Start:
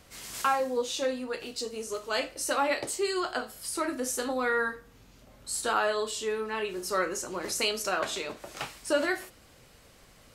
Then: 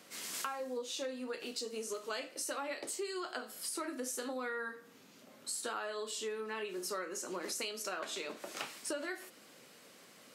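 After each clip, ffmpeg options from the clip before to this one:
-af "highpass=f=190:w=0.5412,highpass=f=190:w=1.3066,equalizer=f=800:t=o:w=0.77:g=-3,acompressor=threshold=0.0141:ratio=6"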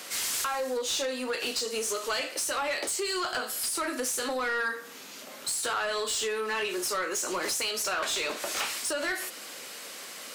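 -filter_complex "[0:a]highshelf=f=6000:g=9,acompressor=threshold=0.0178:ratio=6,asplit=2[s0][s1];[s1]highpass=f=720:p=1,volume=12.6,asoftclip=type=tanh:threshold=0.106[s2];[s0][s2]amix=inputs=2:normalize=0,lowpass=f=6600:p=1,volume=0.501"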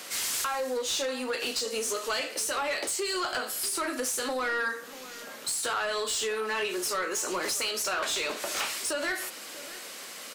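-filter_complex "[0:a]asplit=2[s0][s1];[s1]adelay=641.4,volume=0.158,highshelf=f=4000:g=-14.4[s2];[s0][s2]amix=inputs=2:normalize=0"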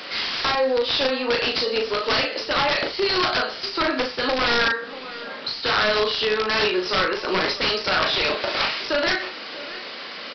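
-filter_complex "[0:a]aresample=11025,aeval=exprs='(mod(16.8*val(0)+1,2)-1)/16.8':c=same,aresample=44100,asplit=2[s0][s1];[s1]adelay=38,volume=0.531[s2];[s0][s2]amix=inputs=2:normalize=0,volume=2.66"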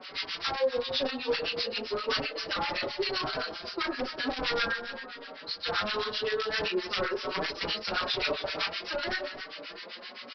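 -filter_complex "[0:a]acrossover=split=1100[s0][s1];[s0]aeval=exprs='val(0)*(1-1/2+1/2*cos(2*PI*7.7*n/s))':c=same[s2];[s1]aeval=exprs='val(0)*(1-1/2-1/2*cos(2*PI*7.7*n/s))':c=same[s3];[s2][s3]amix=inputs=2:normalize=0,aecho=1:1:277:0.266,asplit=2[s4][s5];[s5]adelay=4.9,afreqshift=0.97[s6];[s4][s6]amix=inputs=2:normalize=1,volume=0.794"

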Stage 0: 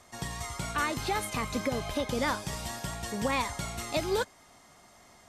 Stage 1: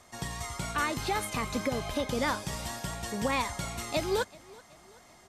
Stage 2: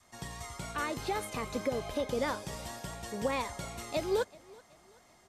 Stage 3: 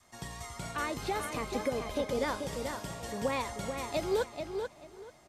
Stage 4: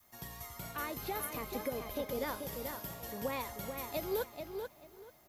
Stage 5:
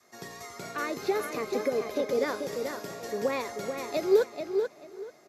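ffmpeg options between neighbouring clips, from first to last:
-af "aecho=1:1:380|760|1140:0.0708|0.0354|0.0177"
-af "adynamicequalizer=threshold=0.00562:dfrequency=480:dqfactor=1.3:tfrequency=480:tqfactor=1.3:attack=5:release=100:ratio=0.375:range=3.5:mode=boostabove:tftype=bell,volume=0.501"
-filter_complex "[0:a]asplit=2[s0][s1];[s1]adelay=436,lowpass=f=4500:p=1,volume=0.501,asplit=2[s2][s3];[s3]adelay=436,lowpass=f=4500:p=1,volume=0.22,asplit=2[s4][s5];[s5]adelay=436,lowpass=f=4500:p=1,volume=0.22[s6];[s0][s2][s4][s6]amix=inputs=4:normalize=0"
-af "aexciter=amount=15.9:drive=5.7:freq=12000,volume=0.531"
-af "highpass=230,equalizer=f=410:t=q:w=4:g=8,equalizer=f=920:t=q:w=4:g=-7,equalizer=f=3100:t=q:w=4:g=-9,equalizer=f=8900:t=q:w=4:g=-10,lowpass=f=9000:w=0.5412,lowpass=f=9000:w=1.3066,volume=2.66"

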